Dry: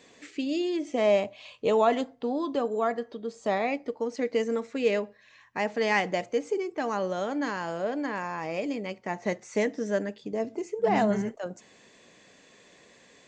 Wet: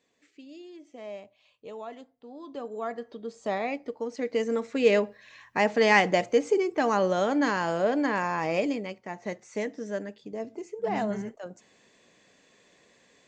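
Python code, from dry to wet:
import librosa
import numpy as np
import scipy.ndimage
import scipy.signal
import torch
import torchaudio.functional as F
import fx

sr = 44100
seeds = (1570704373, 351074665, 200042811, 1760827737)

y = fx.gain(x, sr, db=fx.line((2.25, -17.5), (2.57, -9.5), (3.18, -2.5), (4.17, -2.5), (4.99, 5.0), (8.6, 5.0), (9.03, -5.0)))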